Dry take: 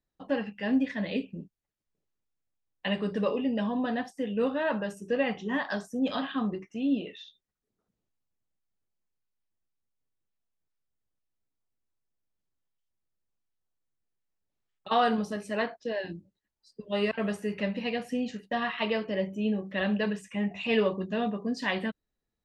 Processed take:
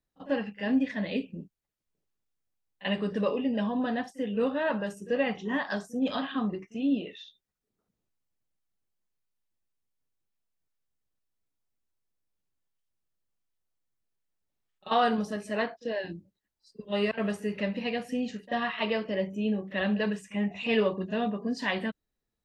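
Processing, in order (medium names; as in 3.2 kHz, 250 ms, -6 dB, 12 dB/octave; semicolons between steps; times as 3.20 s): pre-echo 39 ms -19 dB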